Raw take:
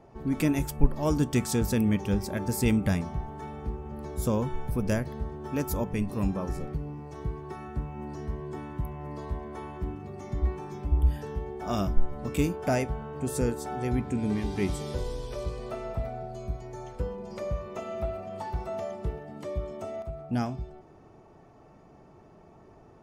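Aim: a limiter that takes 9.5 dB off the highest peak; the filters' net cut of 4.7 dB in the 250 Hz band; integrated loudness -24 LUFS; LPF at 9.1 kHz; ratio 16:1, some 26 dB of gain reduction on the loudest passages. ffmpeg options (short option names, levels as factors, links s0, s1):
-af "lowpass=9100,equalizer=f=250:t=o:g=-6,acompressor=threshold=0.0112:ratio=16,volume=13.3,alimiter=limit=0.211:level=0:latency=1"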